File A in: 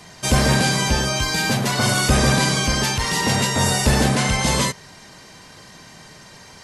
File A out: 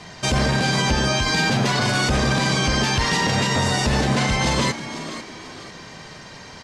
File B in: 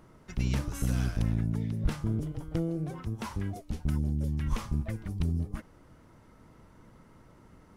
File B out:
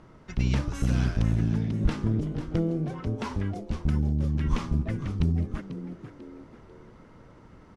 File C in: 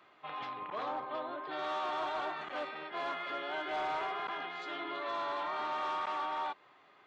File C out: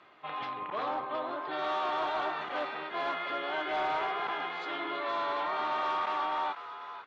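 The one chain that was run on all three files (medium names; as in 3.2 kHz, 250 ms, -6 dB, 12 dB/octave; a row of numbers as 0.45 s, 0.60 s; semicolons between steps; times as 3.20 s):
low-pass 5.6 kHz 12 dB/octave; peak limiter -15.5 dBFS; frequency-shifting echo 493 ms, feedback 35%, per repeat +95 Hz, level -12 dB; trim +4 dB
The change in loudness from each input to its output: -1.5 LU, +4.0 LU, +4.0 LU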